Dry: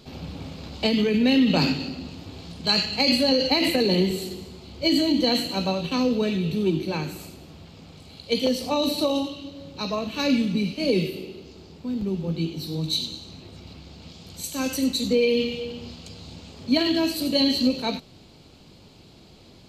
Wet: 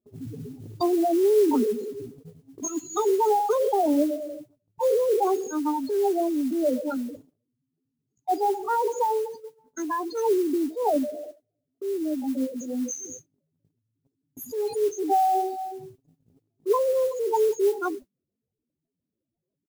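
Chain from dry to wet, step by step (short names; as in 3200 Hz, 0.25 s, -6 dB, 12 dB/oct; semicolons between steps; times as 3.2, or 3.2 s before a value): spectral contrast raised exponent 3.6; gate -38 dBFS, range -34 dB; pitch shift +8 st; treble ducked by the level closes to 2400 Hz, closed at -20 dBFS; modulation noise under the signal 23 dB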